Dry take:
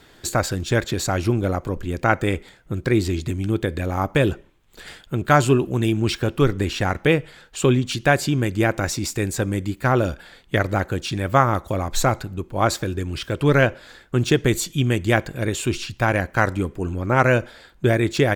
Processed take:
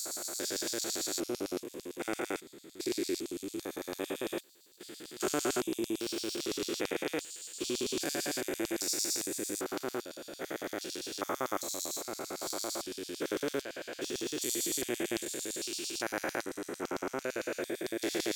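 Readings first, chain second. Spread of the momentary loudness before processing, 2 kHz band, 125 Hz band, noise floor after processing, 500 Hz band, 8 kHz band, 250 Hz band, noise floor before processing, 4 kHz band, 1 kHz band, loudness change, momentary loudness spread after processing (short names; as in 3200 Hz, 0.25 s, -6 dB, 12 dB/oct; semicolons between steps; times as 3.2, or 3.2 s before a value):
8 LU, -16.5 dB, -33.0 dB, -52 dBFS, -14.0 dB, -3.5 dB, -14.5 dB, -52 dBFS, -7.0 dB, -18.0 dB, -14.0 dB, 8 LU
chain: stepped spectrum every 0.4 s; LFO high-pass square 8.9 Hz 340–4700 Hz; pre-emphasis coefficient 0.8; gain +2 dB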